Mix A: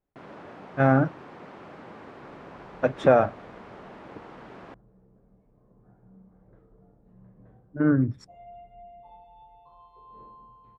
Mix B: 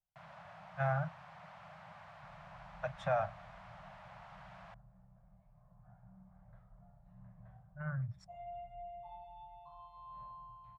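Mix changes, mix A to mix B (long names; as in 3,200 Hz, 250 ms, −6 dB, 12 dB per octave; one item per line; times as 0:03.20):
speech −11.0 dB
first sound −6.0 dB
master: add elliptic band-stop filter 170–640 Hz, stop band 50 dB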